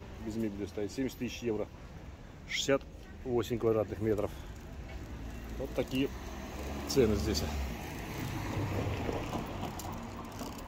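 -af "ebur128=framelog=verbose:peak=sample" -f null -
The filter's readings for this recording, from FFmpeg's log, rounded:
Integrated loudness:
  I:         -35.5 LUFS
  Threshold: -45.9 LUFS
Loudness range:
  LRA:         2.3 LU
  Threshold: -55.3 LUFS
  LRA low:   -36.8 LUFS
  LRA high:  -34.5 LUFS
Sample peak:
  Peak:      -14.3 dBFS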